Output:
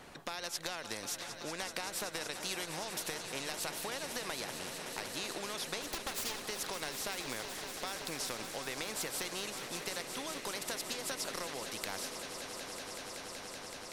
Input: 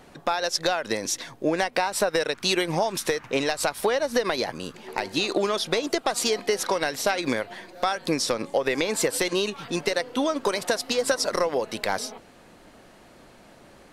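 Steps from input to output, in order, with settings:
0:05.82–0:06.42: lower of the sound and its delayed copy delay 3.7 ms
echo that builds up and dies away 189 ms, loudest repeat 5, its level −17.5 dB
every bin compressed towards the loudest bin 2 to 1
level −8.5 dB

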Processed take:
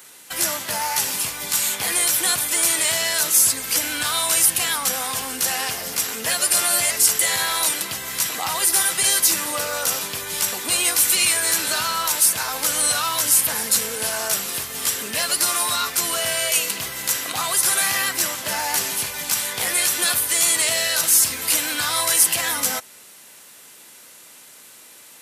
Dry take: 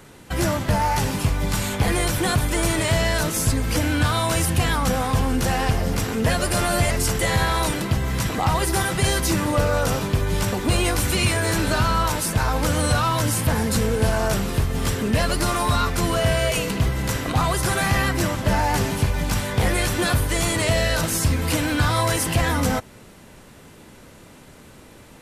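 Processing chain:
high-pass filter 150 Hz 6 dB per octave
spectral tilt +4.5 dB per octave
level −3.5 dB

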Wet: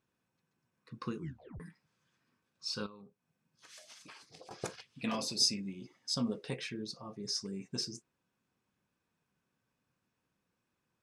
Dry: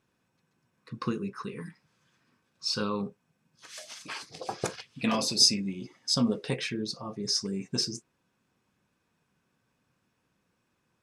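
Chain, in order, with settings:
0:01.17: tape stop 0.43 s
0:02.86–0:04.51: downward compressor 16 to 1, threshold −42 dBFS, peak gain reduction 15.5 dB
level −8 dB

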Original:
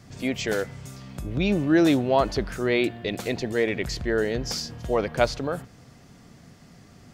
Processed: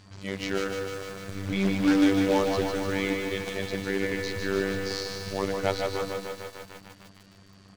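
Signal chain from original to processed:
drawn EQ curve 1,600 Hz 0 dB, 6,600 Hz +3 dB, 9,700 Hz +10 dB
echo with shifted repeats 144 ms, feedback 32%, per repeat +38 Hz, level −8 dB
phases set to zero 106 Hz
log-companded quantiser 4 bits
steady tone 5,000 Hz −59 dBFS
high-frequency loss of the air 85 metres
wrong playback speed 48 kHz file played as 44.1 kHz
feedback echo at a low word length 150 ms, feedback 80%, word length 7 bits, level −6 dB
level −2 dB

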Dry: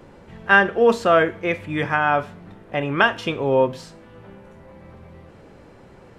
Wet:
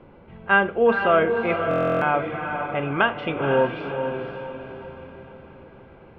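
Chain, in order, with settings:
low-pass filter 3,000 Hz 24 dB per octave
notch filter 1,800 Hz, Q 6.9
on a send: feedback delay with all-pass diffusion 495 ms, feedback 45%, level −6 dB
on the sum: buffer that repeats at 0:01.69, samples 1,024, times 13
level −2.5 dB

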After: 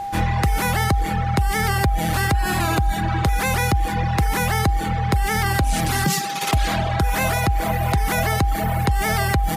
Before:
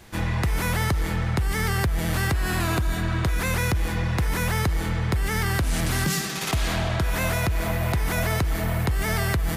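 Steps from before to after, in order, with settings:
reverb reduction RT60 1.2 s
steady tone 800 Hz −31 dBFS
level +5.5 dB

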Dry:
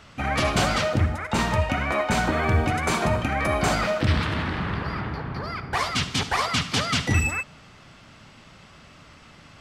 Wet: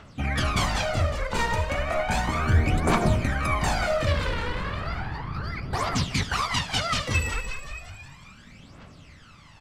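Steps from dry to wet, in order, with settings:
echo with shifted repeats 185 ms, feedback 62%, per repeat −45 Hz, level −9.5 dB
phase shifter 0.34 Hz, delay 2.2 ms, feedback 63%
level −5 dB

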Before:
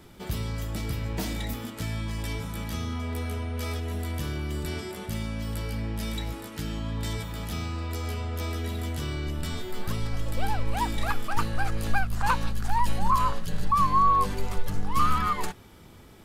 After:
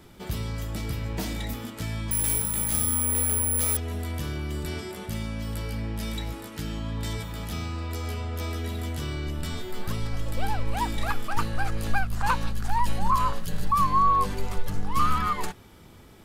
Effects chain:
0:02.11–0:03.77: bad sample-rate conversion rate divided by 4×, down none, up zero stuff
0:13.33–0:13.84: high-shelf EQ 12,000 Hz +10 dB

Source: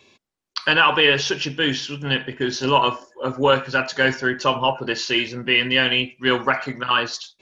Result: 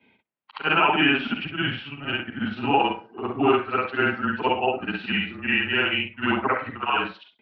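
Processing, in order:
every overlapping window played backwards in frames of 143 ms
parametric band 290 Hz +3 dB 1.6 octaves
single-sideband voice off tune −150 Hz 340–3,100 Hz

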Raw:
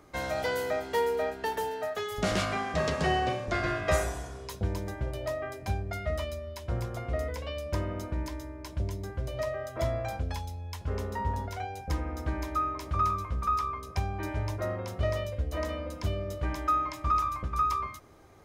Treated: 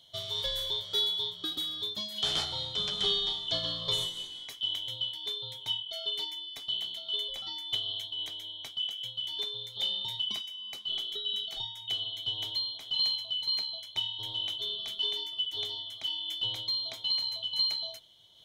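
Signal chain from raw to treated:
band-splitting scrambler in four parts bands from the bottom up 2413
amplitude modulation by smooth noise, depth 55%

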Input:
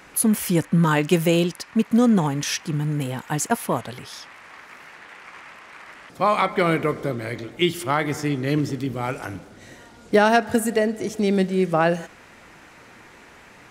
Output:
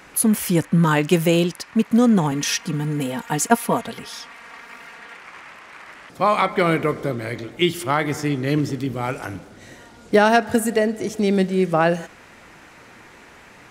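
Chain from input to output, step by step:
0:02.31–0:05.17: comb filter 4.3 ms, depth 69%
level +1.5 dB

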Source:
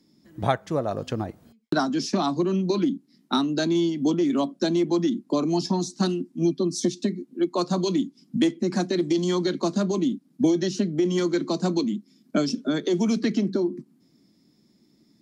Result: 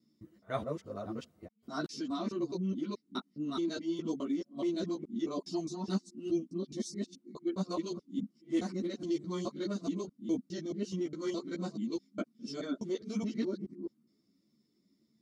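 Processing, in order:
reversed piece by piece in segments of 210 ms
notch comb filter 830 Hz
string-ensemble chorus
level −9 dB

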